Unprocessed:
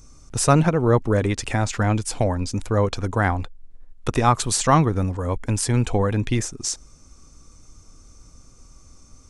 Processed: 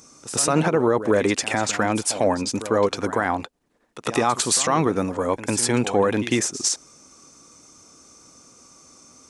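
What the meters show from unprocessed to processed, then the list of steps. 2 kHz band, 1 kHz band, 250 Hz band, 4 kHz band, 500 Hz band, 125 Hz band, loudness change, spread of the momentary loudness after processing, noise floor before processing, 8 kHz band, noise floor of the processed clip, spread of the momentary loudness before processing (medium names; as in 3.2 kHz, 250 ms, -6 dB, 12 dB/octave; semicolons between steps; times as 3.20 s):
+2.5 dB, -0.5 dB, 0.0 dB, +4.0 dB, +2.0 dB, -9.5 dB, 0.0 dB, 6 LU, -50 dBFS, +4.0 dB, -62 dBFS, 10 LU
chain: high-pass 260 Hz 12 dB/octave; de-esser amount 30%; peak limiter -14 dBFS, peak gain reduction 11 dB; pre-echo 101 ms -13.5 dB; trim +5.5 dB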